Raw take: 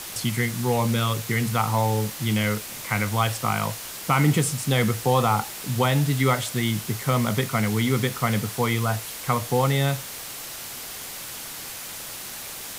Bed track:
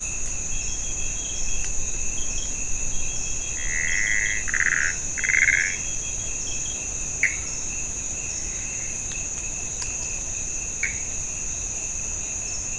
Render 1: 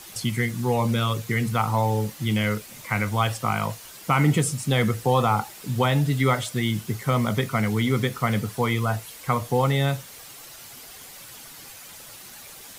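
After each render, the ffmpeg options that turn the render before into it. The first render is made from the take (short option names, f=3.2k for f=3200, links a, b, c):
-af "afftdn=nr=9:nf=-36"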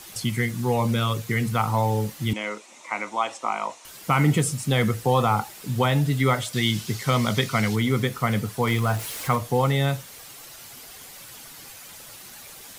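-filter_complex "[0:a]asettb=1/sr,asplit=3[a][b][c];[a]atrim=end=2.334[d];[b]atrim=start=2.33:end=3.85,asetpts=PTS-STARTPTS,afade=t=in:d=0.004:c=qsin,afade=t=out:st=1.516:d=0.004:c=qsin,highpass=f=300:w=0.5412,highpass=f=300:w=1.3066,equalizer=f=450:t=q:w=4:g=-7,equalizer=f=940:t=q:w=4:g=4,equalizer=f=1.6k:t=q:w=4:g=-9,equalizer=f=3.1k:t=q:w=4:g=-5,equalizer=f=4.7k:t=q:w=4:g=-9,lowpass=f=7.5k:w=0.5412,lowpass=f=7.5k:w=1.3066[e];[c]atrim=start=3.846[f];[d][e]acrossfade=d=0.004:c1=hsin:c2=qsin[g];[g][f]acrossfade=d=0.004:c1=qsin:c2=hsin,asettb=1/sr,asplit=3[h][i][j];[h]atrim=end=6.534[k];[i]atrim=start=6.53:end=7.76,asetpts=PTS-STARTPTS,afade=t=in:d=0.004:c=qsin,afade=t=out:st=1.226:d=0.004:c=qsin,equalizer=f=4.5k:w=0.72:g=9[l];[j]atrim=start=7.756[m];[k][l]acrossfade=d=0.004:c1=hsin:c2=qsin[n];[n][m]acrossfade=d=0.004:c1=qsin:c2=hsin,asettb=1/sr,asplit=3[o][p][q];[o]atrim=end=8.674[r];[p]atrim=start=8.67:end=9.36,asetpts=PTS-STARTPTS,afade=t=in:d=0.004:c=qsin,afade=t=out:st=0.686:d=0.004:c=qsin,aeval=exprs='val(0)+0.5*0.0266*sgn(val(0))':c=same[s];[q]atrim=start=9.356[t];[r][s]acrossfade=d=0.004:c1=hsin:c2=qsin[u];[u][t]acrossfade=d=0.004:c1=qsin:c2=hsin"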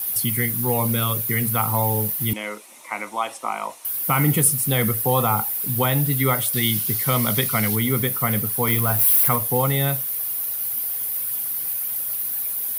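-af "aexciter=amount=10.6:drive=6.4:freq=10k"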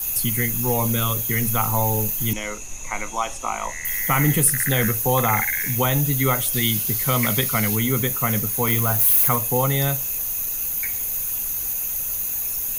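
-filter_complex "[1:a]volume=-8dB[a];[0:a][a]amix=inputs=2:normalize=0"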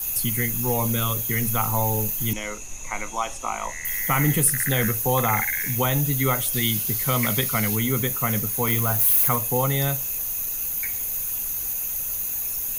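-af "volume=-2dB"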